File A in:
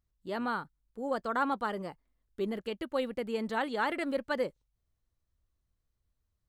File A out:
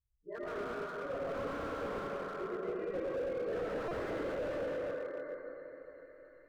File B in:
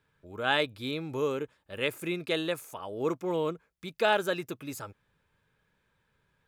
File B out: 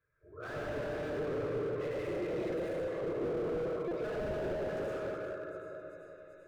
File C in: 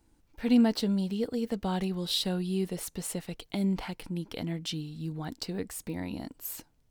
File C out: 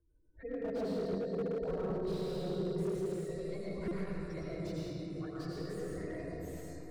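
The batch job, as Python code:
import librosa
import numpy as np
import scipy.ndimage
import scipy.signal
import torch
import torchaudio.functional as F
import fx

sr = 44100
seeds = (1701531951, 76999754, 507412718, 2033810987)

p1 = fx.phase_scramble(x, sr, seeds[0], window_ms=50)
p2 = fx.spec_gate(p1, sr, threshold_db=-20, keep='strong')
p3 = scipy.signal.sosfilt(scipy.signal.butter(2, 6600.0, 'lowpass', fs=sr, output='sos'), p2)
p4 = fx.fixed_phaser(p3, sr, hz=850.0, stages=6)
p5 = p4 + fx.echo_wet_highpass(p4, sr, ms=389, feedback_pct=77, hz=1800.0, wet_db=-19.5, dry=0)
p6 = fx.rev_freeverb(p5, sr, rt60_s=4.0, hf_ratio=0.4, predelay_ms=60, drr_db=-7.5)
p7 = fx.buffer_glitch(p6, sr, at_s=(3.88,), block=128, repeats=10)
p8 = fx.slew_limit(p7, sr, full_power_hz=21.0)
y = F.gain(torch.from_numpy(p8), -6.0).numpy()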